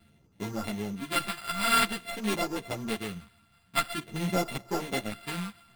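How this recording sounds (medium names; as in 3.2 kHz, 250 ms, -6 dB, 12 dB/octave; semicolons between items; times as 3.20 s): a buzz of ramps at a fixed pitch in blocks of 32 samples; phasing stages 2, 0.49 Hz, lowest notch 430–1800 Hz; aliases and images of a low sample rate 6.2 kHz, jitter 0%; a shimmering, thickened sound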